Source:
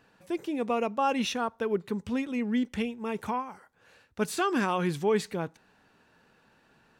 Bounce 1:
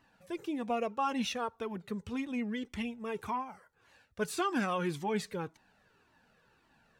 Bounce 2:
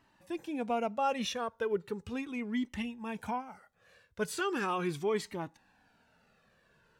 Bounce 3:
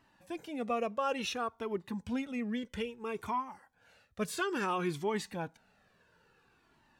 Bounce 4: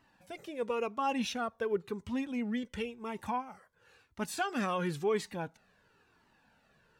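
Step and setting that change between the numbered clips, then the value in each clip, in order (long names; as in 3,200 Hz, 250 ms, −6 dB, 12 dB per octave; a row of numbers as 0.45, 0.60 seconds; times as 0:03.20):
flanger whose copies keep moving one way, speed: 1.8, 0.38, 0.59, 0.96 Hertz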